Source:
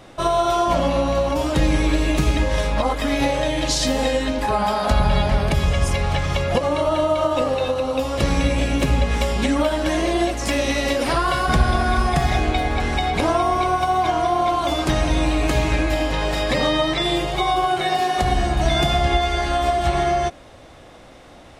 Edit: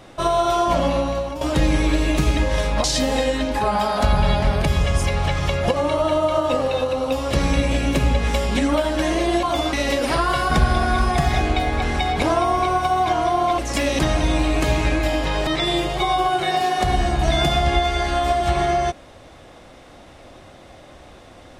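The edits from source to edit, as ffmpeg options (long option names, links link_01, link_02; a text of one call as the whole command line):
ffmpeg -i in.wav -filter_complex "[0:a]asplit=8[link_01][link_02][link_03][link_04][link_05][link_06][link_07][link_08];[link_01]atrim=end=1.41,asetpts=PTS-STARTPTS,afade=type=out:start_time=0.91:duration=0.5:silence=0.298538[link_09];[link_02]atrim=start=1.41:end=2.842,asetpts=PTS-STARTPTS,afade=type=in:duration=0.004:curve=hsin:silence=0.298538[link_10];[link_03]atrim=start=3.708:end=10.302[link_11];[link_04]atrim=start=14.558:end=14.862[link_12];[link_05]atrim=start=10.708:end=14.562[link_13];[link_06]atrim=start=10.298:end=10.712[link_14];[link_07]atrim=start=14.858:end=16.342[link_15];[link_08]atrim=start=16.848[link_16];[link_09][link_10]concat=n=2:v=0:a=1[link_17];[link_17][link_11]acrossfade=duration=0.004:curve1=hsin:curve2=hsin[link_18];[link_18][link_12]acrossfade=duration=0.004:curve1=hsin:curve2=hsin[link_19];[link_19][link_13]acrossfade=duration=0.004:curve1=hsin:curve2=hsin[link_20];[link_20][link_14]acrossfade=duration=0.004:curve1=hsin:curve2=hsin[link_21];[link_21][link_15]acrossfade=duration=0.004:curve1=hsin:curve2=hsin[link_22];[link_22][link_16]acrossfade=duration=0.004:curve1=hsin:curve2=hsin" out.wav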